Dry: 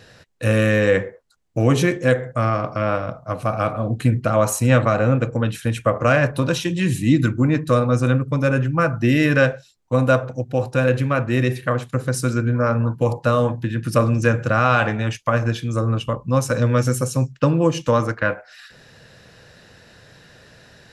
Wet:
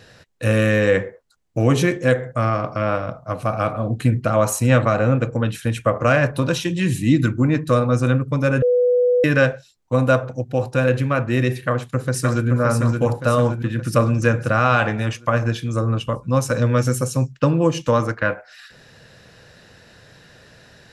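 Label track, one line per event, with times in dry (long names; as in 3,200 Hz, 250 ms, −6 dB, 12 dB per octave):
8.620000	9.240000	beep over 493 Hz −13 dBFS
11.580000	12.480000	delay throw 570 ms, feedback 55%, level −4.5 dB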